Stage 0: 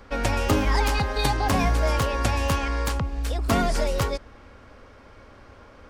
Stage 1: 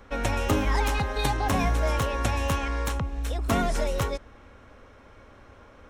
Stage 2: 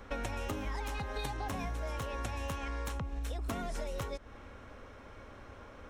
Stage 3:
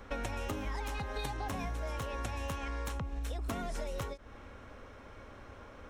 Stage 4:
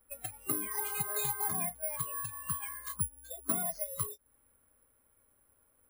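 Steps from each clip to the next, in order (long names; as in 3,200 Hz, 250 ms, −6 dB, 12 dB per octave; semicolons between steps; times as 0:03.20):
notch filter 4,700 Hz, Q 6.1; level −2.5 dB
downward compressor 10 to 1, threshold −34 dBFS, peak gain reduction 15.5 dB
every ending faded ahead of time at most 310 dB per second
noise reduction from a noise print of the clip's start 27 dB; bad sample-rate conversion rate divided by 4×, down filtered, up zero stuff; level +2 dB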